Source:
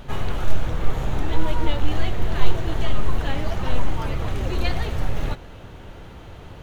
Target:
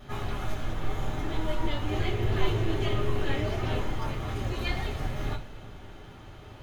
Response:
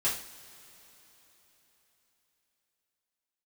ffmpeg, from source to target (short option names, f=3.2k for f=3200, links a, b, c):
-filter_complex "[0:a]asettb=1/sr,asplit=3[a][b][c];[a]atrim=end=1.894[d];[b]atrim=start=1.89:end=3.79,asetpts=PTS-STARTPTS,afade=t=in:d=0.004:c=qsin,afade=t=out:st=1.896:d=0.004:c=qsin,equalizer=f=100:t=o:w=0.67:g=6,equalizer=f=400:t=o:w=0.67:g=9,equalizer=f=2.5k:t=o:w=0.67:g=4[e];[c]atrim=start=3.786[f];[d][e]acrossfade=d=0.004:c1=hsin:c2=qsin[g];[g][f]acrossfade=d=0.004:c1=qsin:c2=hsin[h];[1:a]atrim=start_sample=2205,asetrate=83790,aresample=44100[i];[h][i]afir=irnorm=-1:irlink=0,volume=-6dB"